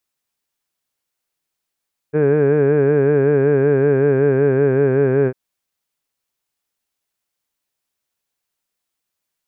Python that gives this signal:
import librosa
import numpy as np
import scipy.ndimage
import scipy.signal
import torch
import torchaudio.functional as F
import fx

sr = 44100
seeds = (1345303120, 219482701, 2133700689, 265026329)

y = fx.formant_vowel(sr, seeds[0], length_s=3.2, hz=146.0, glide_st=-1.5, vibrato_hz=5.3, vibrato_st=0.9, f1_hz=430.0, f2_hz=1600.0, f3_hz=2400.0)